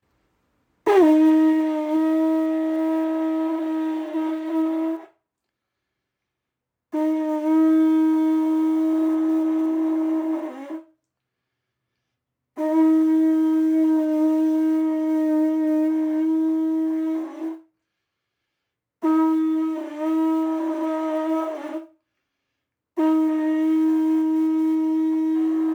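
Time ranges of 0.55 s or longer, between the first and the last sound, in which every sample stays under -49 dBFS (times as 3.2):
5.11–6.92
10.88–12.57
17.63–19.02
21.91–22.97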